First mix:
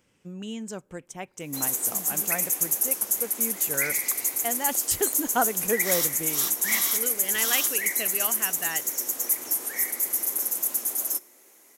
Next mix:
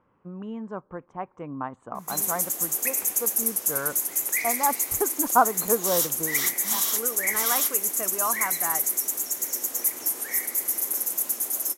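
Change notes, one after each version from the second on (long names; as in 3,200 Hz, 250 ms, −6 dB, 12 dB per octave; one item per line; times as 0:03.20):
speech: add low-pass with resonance 1,100 Hz, resonance Q 3.9
first sound: entry +0.55 s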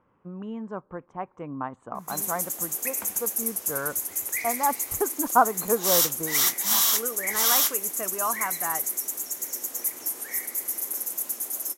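first sound −3.5 dB
second sound +6.5 dB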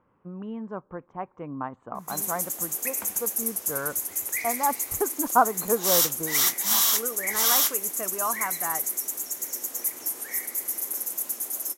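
speech: add high-frequency loss of the air 130 metres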